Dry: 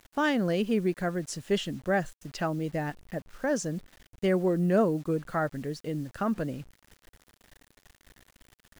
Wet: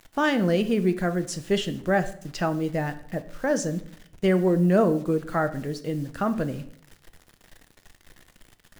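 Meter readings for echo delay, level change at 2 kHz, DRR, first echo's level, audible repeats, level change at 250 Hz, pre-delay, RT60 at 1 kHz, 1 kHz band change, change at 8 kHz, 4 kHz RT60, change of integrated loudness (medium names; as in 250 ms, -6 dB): no echo, +4.0 dB, 9.5 dB, no echo, no echo, +4.5 dB, 5 ms, 0.60 s, +4.0 dB, +4.0 dB, 0.50 s, +4.5 dB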